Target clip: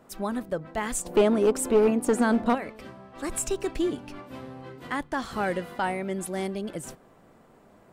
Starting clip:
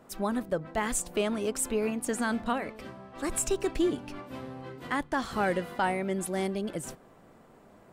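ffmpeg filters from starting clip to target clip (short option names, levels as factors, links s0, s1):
-filter_complex "[0:a]asettb=1/sr,asplit=3[s0][s1][s2];[s0]atrim=end=1.054[s3];[s1]atrim=start=1.05:end=2.55,asetpts=PTS-STARTPTS,afade=t=in:d=0.004:c=qsin,afade=t=out:st=1.496:d=0.004:c=qsin,equalizer=f=390:w=0.51:g=11[s4];[s2]atrim=start=2.546[s5];[s3][s4]acrossfade=d=0.004:c1=hsin:c2=qsin[s6];[s6][s5]acrossfade=d=0.004:c1=qsin:c2=hsin,aeval=exprs='clip(val(0),-1,0.141)':c=same"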